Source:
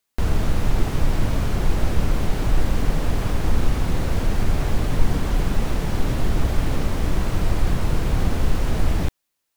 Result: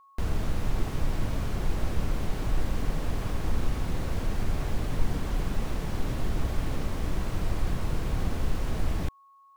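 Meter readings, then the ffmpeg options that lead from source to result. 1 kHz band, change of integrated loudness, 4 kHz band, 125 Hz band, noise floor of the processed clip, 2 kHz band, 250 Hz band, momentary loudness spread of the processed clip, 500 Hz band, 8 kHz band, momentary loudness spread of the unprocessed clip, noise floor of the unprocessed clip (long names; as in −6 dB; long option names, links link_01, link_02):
−7.5 dB, −8.0 dB, −8.0 dB, −8.0 dB, −57 dBFS, −8.0 dB, −8.0 dB, 1 LU, −8.0 dB, −8.0 dB, 1 LU, −77 dBFS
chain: -af "aeval=exprs='val(0)+0.00501*sin(2*PI*1100*n/s)':channel_layout=same,volume=-8dB"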